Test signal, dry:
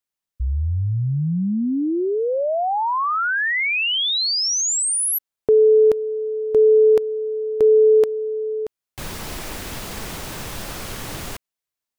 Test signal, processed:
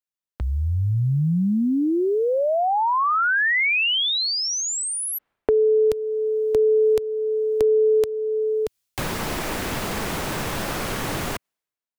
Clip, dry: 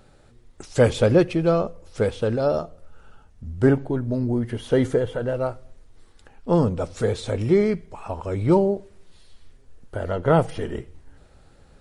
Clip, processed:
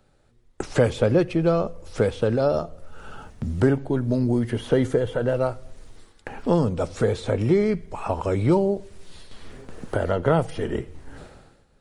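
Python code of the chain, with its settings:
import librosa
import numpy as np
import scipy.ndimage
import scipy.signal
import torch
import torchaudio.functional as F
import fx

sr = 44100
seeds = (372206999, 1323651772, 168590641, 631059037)

y = fx.gate_hold(x, sr, open_db=-39.0, close_db=-45.0, hold_ms=76.0, range_db=-29, attack_ms=0.35, release_ms=468.0)
y = fx.band_squash(y, sr, depth_pct=70)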